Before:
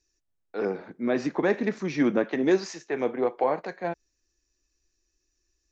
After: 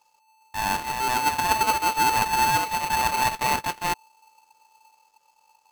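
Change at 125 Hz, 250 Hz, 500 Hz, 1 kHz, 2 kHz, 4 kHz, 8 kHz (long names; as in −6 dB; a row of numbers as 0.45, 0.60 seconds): +2.0 dB, −10.5 dB, −10.0 dB, +14.0 dB, +8.0 dB, +15.0 dB, can't be measured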